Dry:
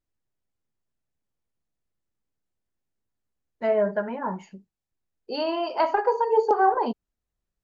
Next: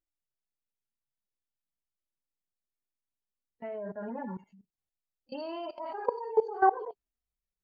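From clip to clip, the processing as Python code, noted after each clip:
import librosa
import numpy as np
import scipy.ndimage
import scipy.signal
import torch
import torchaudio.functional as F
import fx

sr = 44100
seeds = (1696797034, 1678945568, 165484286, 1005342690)

y = fx.hpss_only(x, sr, part='harmonic')
y = fx.level_steps(y, sr, step_db=18)
y = F.gain(torch.from_numpy(y), -1.5).numpy()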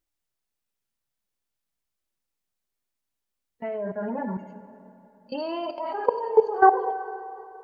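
y = fx.rev_plate(x, sr, seeds[0], rt60_s=3.3, hf_ratio=0.8, predelay_ms=0, drr_db=11.5)
y = F.gain(torch.from_numpy(y), 7.5).numpy()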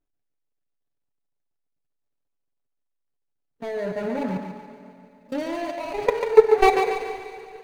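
y = scipy.ndimage.median_filter(x, 41, mode='constant')
y = y + 0.43 * np.pad(y, (int(7.0 * sr / 1000.0), 0))[:len(y)]
y = fx.echo_thinned(y, sr, ms=142, feedback_pct=46, hz=310.0, wet_db=-6)
y = F.gain(torch.from_numpy(y), 4.0).numpy()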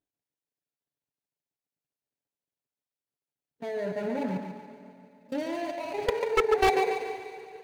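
y = scipy.signal.sosfilt(scipy.signal.butter(2, 93.0, 'highpass', fs=sr, output='sos'), x)
y = fx.peak_eq(y, sr, hz=1200.0, db=-6.5, octaves=0.31)
y = 10.0 ** (-11.5 / 20.0) * (np.abs((y / 10.0 ** (-11.5 / 20.0) + 3.0) % 4.0 - 2.0) - 1.0)
y = F.gain(torch.from_numpy(y), -3.5).numpy()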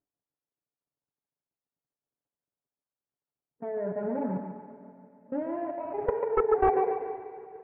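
y = scipy.signal.sosfilt(scipy.signal.butter(4, 1400.0, 'lowpass', fs=sr, output='sos'), x)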